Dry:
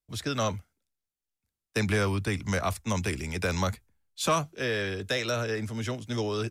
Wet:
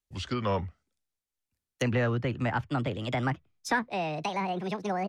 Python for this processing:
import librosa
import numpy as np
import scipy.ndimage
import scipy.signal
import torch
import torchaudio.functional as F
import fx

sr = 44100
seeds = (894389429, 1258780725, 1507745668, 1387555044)

y = fx.speed_glide(x, sr, from_pct=80, to_pct=176)
y = fx.env_lowpass_down(y, sr, base_hz=2000.0, full_db=-26.5)